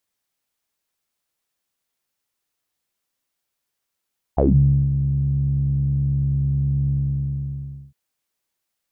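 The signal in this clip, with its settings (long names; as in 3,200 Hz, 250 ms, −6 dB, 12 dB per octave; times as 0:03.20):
subtractive voice saw C#2 12 dB per octave, low-pass 150 Hz, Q 9.6, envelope 2.5 octaves, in 0.17 s, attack 13 ms, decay 0.51 s, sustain −9 dB, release 1.03 s, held 2.53 s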